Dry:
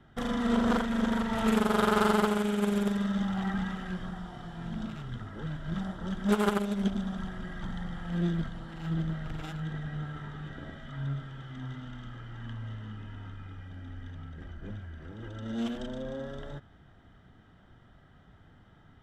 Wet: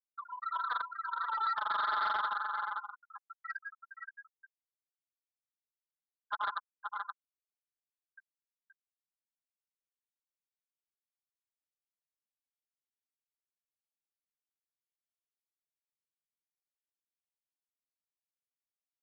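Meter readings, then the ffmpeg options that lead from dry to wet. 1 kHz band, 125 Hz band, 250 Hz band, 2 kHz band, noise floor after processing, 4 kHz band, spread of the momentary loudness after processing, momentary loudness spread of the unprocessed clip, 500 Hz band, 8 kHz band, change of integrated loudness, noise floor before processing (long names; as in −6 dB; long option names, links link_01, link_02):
−1.0 dB, below −40 dB, below −40 dB, −3.5 dB, below −85 dBFS, −8.5 dB, 17 LU, 17 LU, −26.0 dB, below −30 dB, −3.5 dB, −58 dBFS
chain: -af "highpass=frequency=940:width=0.5412,highpass=frequency=940:width=1.3066,afftfilt=real='re*gte(hypot(re,im),0.0631)':imag='im*gte(hypot(re,im),0.0631)':win_size=1024:overlap=0.75,aecho=1:1:5.9:0.48,alimiter=level_in=1.5dB:limit=-24dB:level=0:latency=1:release=295,volume=-1.5dB,aecho=1:1:524:0.447,asoftclip=type=tanh:threshold=-35.5dB,aresample=11025,aresample=44100,volume=8.5dB"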